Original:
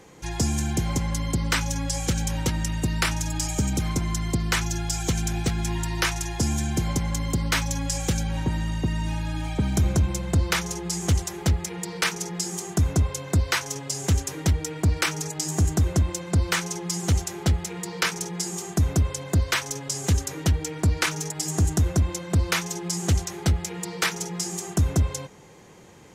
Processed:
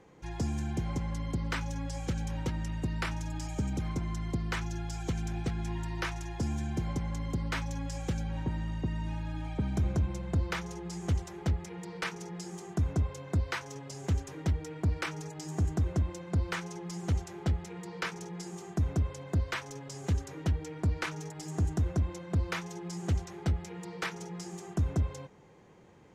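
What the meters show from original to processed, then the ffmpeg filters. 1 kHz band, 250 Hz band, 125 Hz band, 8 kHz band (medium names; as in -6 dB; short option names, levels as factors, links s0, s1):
-8.5 dB, -7.5 dB, -7.5 dB, -18.5 dB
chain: -af "lowpass=f=1900:p=1,volume=0.422"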